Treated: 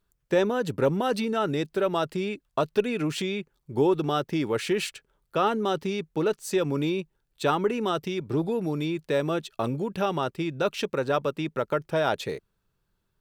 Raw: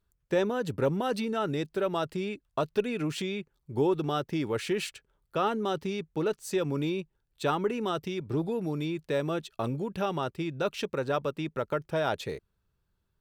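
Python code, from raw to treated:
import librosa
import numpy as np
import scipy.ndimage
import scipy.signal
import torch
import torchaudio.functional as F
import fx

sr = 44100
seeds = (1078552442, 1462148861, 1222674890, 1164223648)

y = fx.peak_eq(x, sr, hz=68.0, db=-9.0, octaves=1.1)
y = y * 10.0 ** (4.0 / 20.0)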